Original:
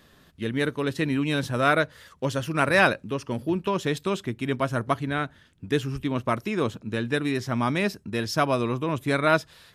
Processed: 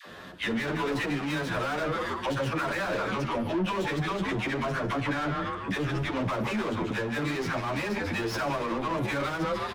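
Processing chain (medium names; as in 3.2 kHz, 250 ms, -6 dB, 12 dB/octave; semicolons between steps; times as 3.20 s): tracing distortion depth 0.093 ms; bass shelf 160 Hz +7 dB; phase dispersion lows, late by 68 ms, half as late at 580 Hz; frequency-shifting echo 148 ms, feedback 36%, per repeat -120 Hz, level -15 dB; level rider gain up to 11.5 dB; overdrive pedal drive 35 dB, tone 1.5 kHz, clips at -0.5 dBFS; compression, threshold -14 dBFS, peak gain reduction 8.5 dB; reverberation, pre-delay 3 ms, DRR 12 dB; peak limiter -12 dBFS, peak gain reduction 5.5 dB; 3.85–6.22 s: treble shelf 9.9 kHz -5.5 dB; endless flanger 9.9 ms +1.5 Hz; trim -9 dB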